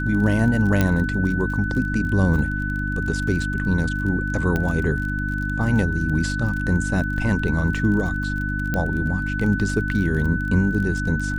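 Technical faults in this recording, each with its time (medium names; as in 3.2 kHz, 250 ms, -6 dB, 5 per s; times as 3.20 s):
crackle 30 per s -29 dBFS
hum 50 Hz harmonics 6 -26 dBFS
whine 1.5 kHz -27 dBFS
0.81 s: pop -6 dBFS
4.56 s: pop -11 dBFS
8.74 s: pop -11 dBFS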